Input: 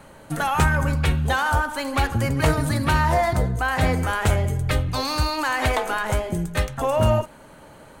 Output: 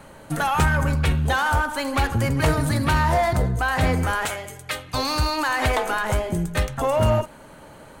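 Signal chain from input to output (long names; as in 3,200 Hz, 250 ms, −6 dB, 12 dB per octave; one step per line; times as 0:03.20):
0:04.25–0:04.94: high-pass filter 1,300 Hz 6 dB per octave
in parallel at −3.5 dB: hard clipping −20.5 dBFS, distortion −9 dB
on the sum: level −3 dB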